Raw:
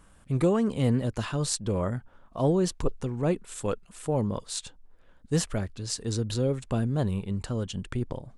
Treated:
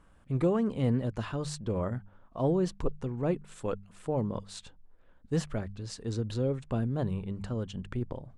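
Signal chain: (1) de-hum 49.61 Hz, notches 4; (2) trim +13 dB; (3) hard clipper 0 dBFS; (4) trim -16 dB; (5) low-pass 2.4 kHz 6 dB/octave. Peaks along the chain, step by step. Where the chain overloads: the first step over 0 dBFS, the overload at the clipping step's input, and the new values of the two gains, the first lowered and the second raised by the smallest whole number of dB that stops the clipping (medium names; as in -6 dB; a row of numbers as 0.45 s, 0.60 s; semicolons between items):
-9.0 dBFS, +4.0 dBFS, 0.0 dBFS, -16.0 dBFS, -16.0 dBFS; step 2, 4.0 dB; step 2 +9 dB, step 4 -12 dB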